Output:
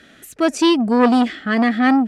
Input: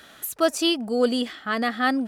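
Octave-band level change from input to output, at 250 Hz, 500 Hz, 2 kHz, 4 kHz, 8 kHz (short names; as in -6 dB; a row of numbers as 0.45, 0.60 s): +10.5, +4.0, +5.0, +1.0, 0.0 dB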